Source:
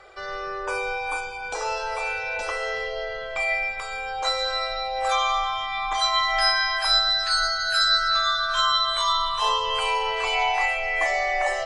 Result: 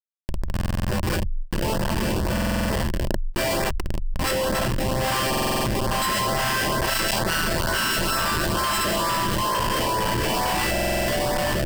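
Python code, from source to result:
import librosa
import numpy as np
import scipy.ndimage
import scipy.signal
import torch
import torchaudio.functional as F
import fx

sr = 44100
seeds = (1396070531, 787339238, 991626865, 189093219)

y = fx.tracing_dist(x, sr, depth_ms=0.16)
y = fx.high_shelf(y, sr, hz=4300.0, db=-5.5, at=(6.21, 8.63))
y = fx.schmitt(y, sr, flips_db=-23.5)
y = fx.filter_lfo_notch(y, sr, shape='saw_up', hz=2.2, low_hz=230.0, high_hz=3200.0, q=1.9)
y = fx.ripple_eq(y, sr, per_octave=1.3, db=7)
y = fx.buffer_glitch(y, sr, at_s=(0.52, 2.33, 5.29, 10.71), block=2048, repeats=7)
y = fx.env_flatten(y, sr, amount_pct=100)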